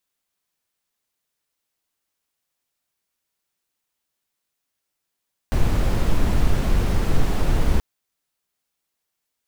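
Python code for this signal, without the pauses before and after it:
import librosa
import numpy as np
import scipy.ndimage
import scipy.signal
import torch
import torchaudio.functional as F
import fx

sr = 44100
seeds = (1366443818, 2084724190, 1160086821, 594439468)

y = fx.noise_colour(sr, seeds[0], length_s=2.28, colour='brown', level_db=-16.5)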